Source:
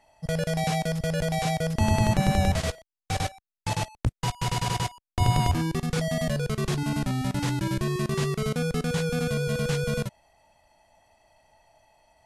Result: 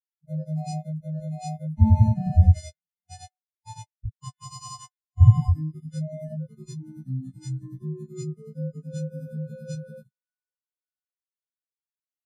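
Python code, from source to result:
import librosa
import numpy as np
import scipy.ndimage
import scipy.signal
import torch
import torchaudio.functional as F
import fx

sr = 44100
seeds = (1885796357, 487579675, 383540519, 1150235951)

y = fx.freq_snap(x, sr, grid_st=3)
y = fx.echo_thinned(y, sr, ms=571, feedback_pct=82, hz=230.0, wet_db=-17)
y = fx.spectral_expand(y, sr, expansion=4.0)
y = F.gain(torch.from_numpy(y), 8.0).numpy()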